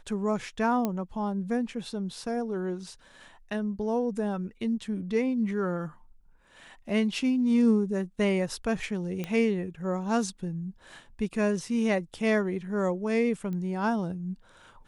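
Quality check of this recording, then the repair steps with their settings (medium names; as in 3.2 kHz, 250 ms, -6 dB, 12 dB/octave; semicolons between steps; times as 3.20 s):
0.85 s: pop -15 dBFS
9.24 s: pop -19 dBFS
13.53 s: pop -26 dBFS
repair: de-click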